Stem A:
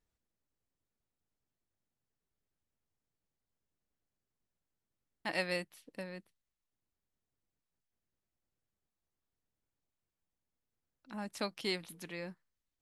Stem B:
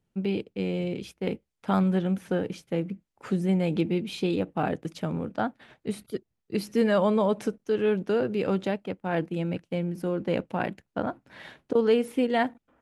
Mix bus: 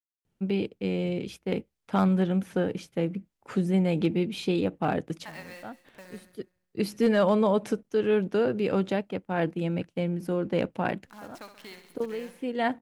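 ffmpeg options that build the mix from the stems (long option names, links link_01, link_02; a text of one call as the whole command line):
ffmpeg -i stem1.wav -i stem2.wav -filter_complex "[0:a]acompressor=threshold=-38dB:ratio=4,equalizer=frequency=1200:width=0.68:gain=8.5,acrusher=bits=8:dc=4:mix=0:aa=0.000001,volume=-7.5dB,asplit=3[link_01][link_02][link_03];[link_02]volume=-10dB[link_04];[1:a]adelay=250,volume=0.5dB[link_05];[link_03]apad=whole_len=576082[link_06];[link_05][link_06]sidechaincompress=threshold=-55dB:ratio=8:attack=7.4:release=483[link_07];[link_04]aecho=0:1:66|132|198|264|330|396|462|528|594:1|0.59|0.348|0.205|0.121|0.0715|0.0422|0.0249|0.0147[link_08];[link_01][link_07][link_08]amix=inputs=3:normalize=0,asoftclip=type=hard:threshold=-15dB" out.wav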